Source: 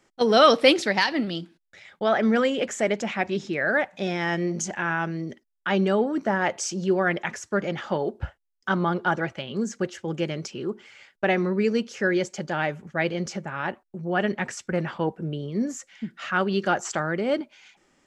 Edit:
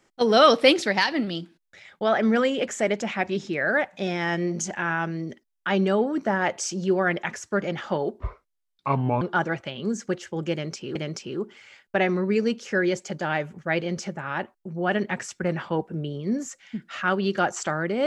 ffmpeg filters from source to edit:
-filter_complex "[0:a]asplit=4[s0][s1][s2][s3];[s0]atrim=end=8.204[s4];[s1]atrim=start=8.2:end=8.93,asetpts=PTS-STARTPTS,asetrate=31752,aresample=44100,atrim=end_sample=44712,asetpts=PTS-STARTPTS[s5];[s2]atrim=start=8.926:end=10.672[s6];[s3]atrim=start=10.238[s7];[s4][s5]acrossfade=d=0.004:c1=hsin:c2=hsin[s8];[s8][s6]acrossfade=d=0.004:c1=hsin:c2=hsin[s9];[s9][s7]acrossfade=d=0.004:c1=hsin:c2=hsin"

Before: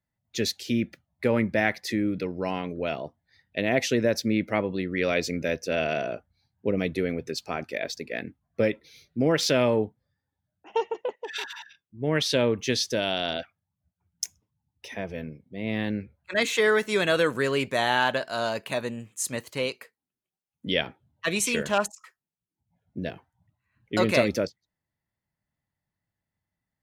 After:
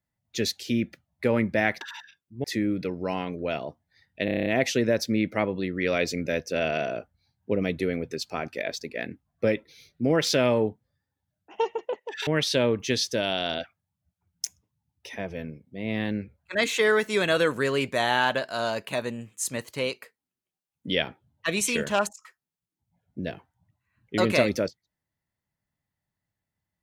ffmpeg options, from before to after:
-filter_complex "[0:a]asplit=11[s0][s1][s2][s3][s4][s5][s6][s7][s8][s9][s10];[s0]atrim=end=1.812[s11];[s1]atrim=start=11.428:end=12.062[s12];[s2]atrim=start=1.808:end=3.652[s13];[s3]atrim=start=3.618:end=3.652[s14];[s4]atrim=start=3.618:end=3.652[s15];[s5]atrim=start=3.618:end=3.652[s16];[s6]atrim=start=3.618:end=3.652[s17];[s7]atrim=start=3.618:end=3.652[s18];[s8]atrim=start=3.618:end=3.652[s19];[s9]atrim=start=3.618:end=11.432[s20];[s10]atrim=start=12.058[s21];[s11][s12]acrossfade=d=0.004:c1=hsin:c2=hsin[s22];[s22][s13]acrossfade=d=0.004:c1=hsin:c2=hsin[s23];[s23][s14]acrossfade=d=0.004:c1=hsin:c2=hsin[s24];[s24][s15]acrossfade=d=0.004:c1=hsin:c2=hsin[s25];[s25][s16]acrossfade=d=0.004:c1=hsin:c2=hsin[s26];[s26][s17]acrossfade=d=0.004:c1=hsin:c2=hsin[s27];[s27][s18]acrossfade=d=0.004:c1=hsin:c2=hsin[s28];[s28][s19]acrossfade=d=0.004:c1=hsin:c2=hsin[s29];[s29][s20]acrossfade=d=0.004:c1=hsin:c2=hsin[s30];[s30][s21]acrossfade=d=0.004:c1=hsin:c2=hsin"

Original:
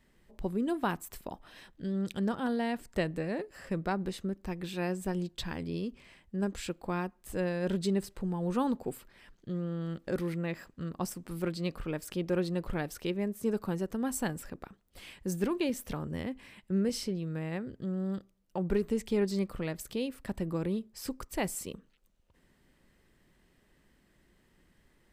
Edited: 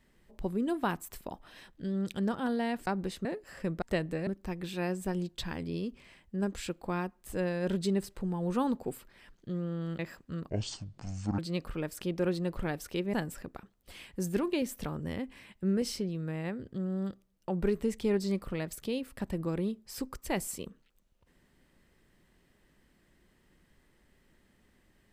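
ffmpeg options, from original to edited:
-filter_complex "[0:a]asplit=9[s0][s1][s2][s3][s4][s5][s6][s7][s8];[s0]atrim=end=2.872[s9];[s1]atrim=start=3.888:end=4.272[s10];[s2]atrim=start=3.318:end=3.892[s11];[s3]atrim=start=2.868:end=3.322[s12];[s4]atrim=start=4.268:end=9.992[s13];[s5]atrim=start=10.478:end=10.984[s14];[s6]atrim=start=10.98:end=11.49,asetpts=PTS-STARTPTS,asetrate=25137,aresample=44100[s15];[s7]atrim=start=11.486:end=13.242[s16];[s8]atrim=start=14.208[s17];[s9][s10]acrossfade=d=0.004:c1=hsin:c2=hsin[s18];[s18][s11]acrossfade=d=0.004:c1=hsin:c2=hsin[s19];[s19][s12]acrossfade=d=0.004:c1=hsin:c2=hsin[s20];[s20][s13]acrossfade=d=0.004:c1=hsin:c2=hsin[s21];[s21][s14]acrossfade=d=0.004:c1=hsin:c2=hsin[s22];[s22][s15]acrossfade=d=0.004:c1=hsin:c2=hsin[s23];[s23][s16]acrossfade=d=0.004:c1=hsin:c2=hsin[s24];[s24][s17]acrossfade=d=0.004:c1=hsin:c2=hsin"

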